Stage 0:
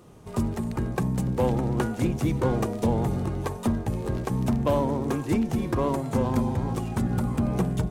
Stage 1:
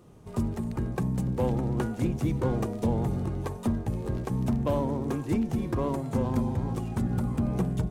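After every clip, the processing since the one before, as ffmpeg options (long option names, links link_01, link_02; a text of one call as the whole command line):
ffmpeg -i in.wav -af "lowshelf=frequency=430:gain=4.5,volume=-6dB" out.wav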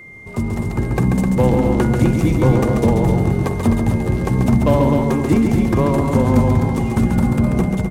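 ffmpeg -i in.wav -af "aecho=1:1:137|256.6:0.562|0.501,dynaudnorm=framelen=200:gausssize=7:maxgain=5dB,aeval=exprs='val(0)+0.00708*sin(2*PI*2100*n/s)':channel_layout=same,volume=6dB" out.wav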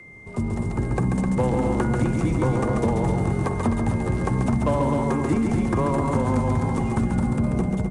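ffmpeg -i in.wav -filter_complex "[0:a]acrossover=split=150|1000[link_01][link_02][link_03];[link_03]dynaudnorm=framelen=200:gausssize=11:maxgain=9dB[link_04];[link_01][link_02][link_04]amix=inputs=3:normalize=0,aresample=22050,aresample=44100,acrossover=split=1500|7400[link_05][link_06][link_07];[link_05]acompressor=threshold=-14dB:ratio=4[link_08];[link_06]acompressor=threshold=-44dB:ratio=4[link_09];[link_07]acompressor=threshold=-45dB:ratio=4[link_10];[link_08][link_09][link_10]amix=inputs=3:normalize=0,volume=-4dB" out.wav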